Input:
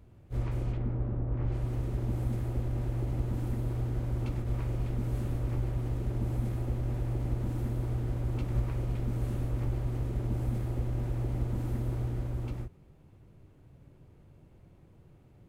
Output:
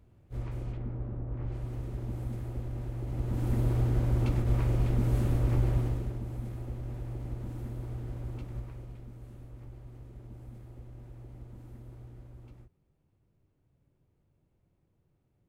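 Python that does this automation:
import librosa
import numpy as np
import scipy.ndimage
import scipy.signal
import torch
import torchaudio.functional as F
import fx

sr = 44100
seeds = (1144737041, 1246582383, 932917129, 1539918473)

y = fx.gain(x, sr, db=fx.line((3.01, -4.5), (3.59, 5.0), (5.77, 5.0), (6.23, -6.0), (8.27, -6.0), (9.17, -15.5)))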